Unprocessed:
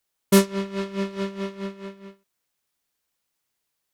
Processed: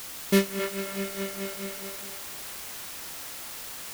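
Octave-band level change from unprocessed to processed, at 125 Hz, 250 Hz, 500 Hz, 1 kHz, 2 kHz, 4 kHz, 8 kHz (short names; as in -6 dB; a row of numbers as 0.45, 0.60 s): n/a, -5.5 dB, -4.0 dB, -5.0 dB, +1.0 dB, 0.0 dB, 0.0 dB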